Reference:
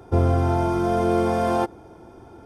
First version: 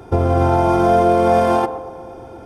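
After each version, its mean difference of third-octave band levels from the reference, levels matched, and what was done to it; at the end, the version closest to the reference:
2.0 dB: brickwall limiter −16 dBFS, peak gain reduction 8 dB
parametric band 2,600 Hz +2.5 dB
on a send: feedback echo with a band-pass in the loop 122 ms, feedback 82%, band-pass 620 Hz, level −10.5 dB
on the sum: dynamic equaliser 730 Hz, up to +5 dB, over −36 dBFS, Q 0.75
level +6.5 dB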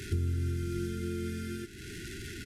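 15.0 dB: linear delta modulator 64 kbit/s, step −33.5 dBFS
comb filter 1.5 ms, depth 39%
downward compressor 3 to 1, threshold −31 dBFS, peak gain reduction 13.5 dB
linear-phase brick-wall band-stop 430–1,400 Hz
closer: first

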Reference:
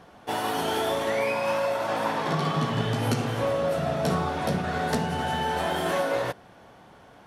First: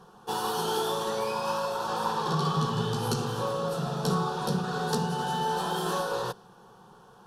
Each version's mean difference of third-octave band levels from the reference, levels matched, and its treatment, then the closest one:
4.0 dB: dynamic equaliser 4,300 Hz, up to +5 dB, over −51 dBFS, Q 1.2
in parallel at −8 dB: asymmetric clip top −28.5 dBFS
on the sum: phaser with its sweep stopped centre 420 Hz, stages 8
level −2 dB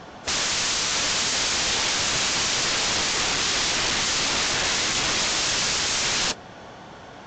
10.0 dB: wrap-around overflow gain 29.5 dB
high-shelf EQ 3,300 Hz +7 dB
level +9 dB
AAC 48 kbit/s 16,000 Hz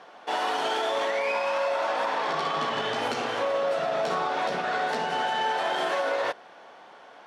6.5 dB: stylus tracing distortion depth 0.1 ms
band-pass filter 490–5,700 Hz
brickwall limiter −23 dBFS, peak gain reduction 8 dB
level +4.5 dB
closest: first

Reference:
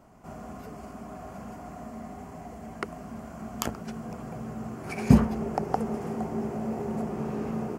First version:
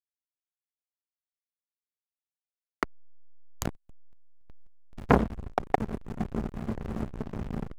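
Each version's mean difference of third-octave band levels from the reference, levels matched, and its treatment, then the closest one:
16.0 dB: automatic gain control gain up to 4.5 dB
slack as between gear wheels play −17.5 dBFS
saturating transformer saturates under 1,100 Hz
level +2.5 dB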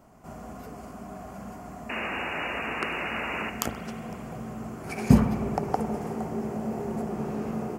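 3.0 dB: sound drawn into the spectrogram noise, 0:01.89–0:03.50, 240–2,900 Hz −33 dBFS
high-shelf EQ 8,500 Hz +5 dB
spring reverb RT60 2.9 s, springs 52 ms, chirp 40 ms, DRR 8.5 dB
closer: second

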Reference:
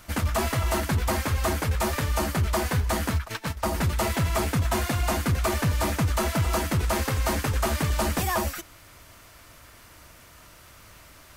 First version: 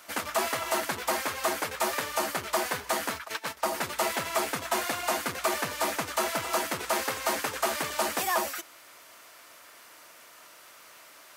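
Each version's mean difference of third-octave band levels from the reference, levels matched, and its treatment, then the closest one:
5.5 dB: high-pass filter 430 Hz 12 dB per octave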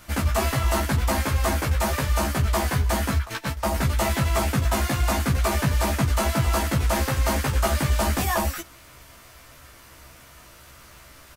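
1.5 dB: double-tracking delay 15 ms −2 dB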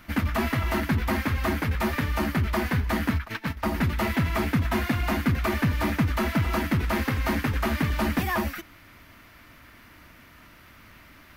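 4.0 dB: octave-band graphic EQ 250/500/2,000/8,000 Hz +9/−4/+6/−12 dB
level −2 dB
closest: second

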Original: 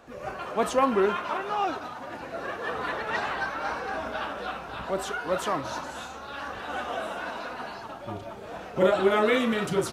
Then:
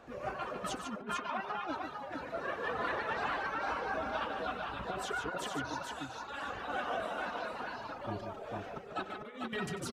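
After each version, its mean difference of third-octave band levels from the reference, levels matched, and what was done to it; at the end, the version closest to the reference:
5.0 dB: reverb reduction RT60 2 s
high-shelf EQ 6,000 Hz −8.5 dB
compressor whose output falls as the input rises −32 dBFS, ratio −0.5
on a send: multi-tap delay 94/148/448 ms −15/−7/−4.5 dB
on the sum: level −6 dB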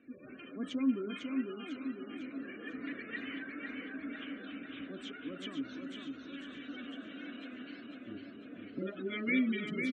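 10.0 dB: gate on every frequency bin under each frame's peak −20 dB strong
dynamic equaliser 440 Hz, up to −6 dB, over −34 dBFS, Q 0.83
formant filter i
repeating echo 500 ms, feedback 53%, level −5 dB
level +5.5 dB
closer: first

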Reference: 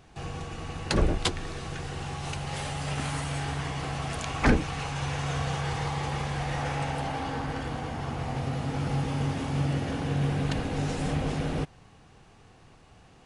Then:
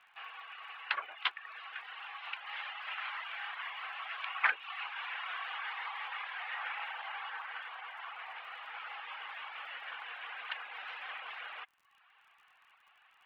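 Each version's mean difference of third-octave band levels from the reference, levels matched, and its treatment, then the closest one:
17.5 dB: high-pass filter 1,100 Hz 24 dB per octave
reverb reduction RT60 0.75 s
Butterworth low-pass 3,100 Hz 36 dB per octave
surface crackle 50 per second −59 dBFS
level +1 dB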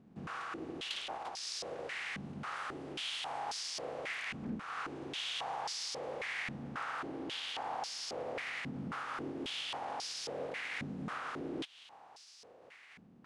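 9.5 dB: compressing power law on the bin magnitudes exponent 0.5
downward compressor, threshold −32 dBFS, peak gain reduction 15 dB
soft clipping −31 dBFS, distortion −15 dB
band-pass on a step sequencer 3.7 Hz 210–5,100 Hz
level +8.5 dB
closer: second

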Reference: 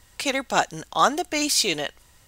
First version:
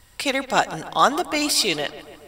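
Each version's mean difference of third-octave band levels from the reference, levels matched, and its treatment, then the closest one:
3.0 dB: notch filter 6,500 Hz, Q 5.2
on a send: feedback echo with a low-pass in the loop 143 ms, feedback 68%, low-pass 3,100 Hz, level −15 dB
on the sum: level +2 dB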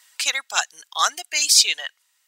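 11.0 dB: reverb reduction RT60 1.5 s
high-pass filter 1,500 Hz 12 dB per octave
dynamic equaliser 6,200 Hz, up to +5 dB, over −37 dBFS, Q 0.9
level +4 dB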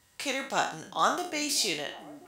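4.0 dB: peak hold with a decay on every bin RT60 0.43 s
high-pass filter 98 Hz 12 dB per octave
echo through a band-pass that steps 344 ms, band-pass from 180 Hz, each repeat 0.7 octaves, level −11 dB
level −8.5 dB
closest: first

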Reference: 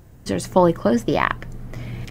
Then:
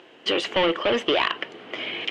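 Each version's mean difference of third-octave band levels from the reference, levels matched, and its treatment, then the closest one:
10.0 dB: Chebyshev high-pass filter 350 Hz, order 3
in parallel at +1 dB: brickwall limiter −14 dBFS, peak gain reduction 10.5 dB
on the sum: soft clipping −18.5 dBFS, distortion −5 dB
low-pass with resonance 3,000 Hz, resonance Q 5.8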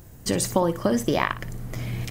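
6.0 dB: high-shelf EQ 5,400 Hz +11 dB
downward compressor 5 to 1, threshold −18 dBFS, peak gain reduction 8 dB
flutter between parallel walls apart 10 metres, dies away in 0.26 s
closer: second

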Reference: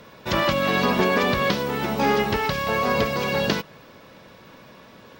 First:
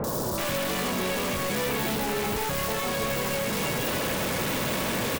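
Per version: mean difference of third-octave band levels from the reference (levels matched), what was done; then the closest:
12.5 dB: sign of each sample alone
three-band delay without the direct sound lows, highs, mids 40/380 ms, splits 1,200/4,700 Hz
level −3 dB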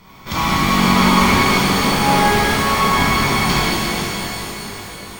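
9.0 dB: lower of the sound and its delayed copy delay 0.9 ms
reverb with rising layers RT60 3.9 s, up +12 semitones, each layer −8 dB, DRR −10 dB
level −1 dB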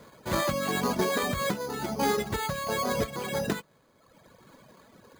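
5.0 dB: running median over 9 samples
reverb reduction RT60 1.3 s
bad sample-rate conversion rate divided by 8×, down filtered, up hold
level −4 dB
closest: third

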